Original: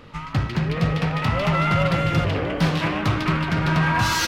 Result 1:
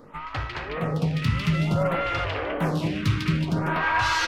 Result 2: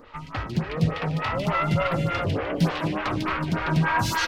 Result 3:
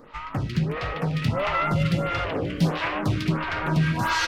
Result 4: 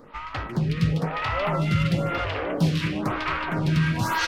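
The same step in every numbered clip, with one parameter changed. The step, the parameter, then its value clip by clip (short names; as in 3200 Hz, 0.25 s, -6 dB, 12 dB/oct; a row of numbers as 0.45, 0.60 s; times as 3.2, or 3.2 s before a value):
photocell phaser, rate: 0.56, 3.4, 1.5, 0.99 Hz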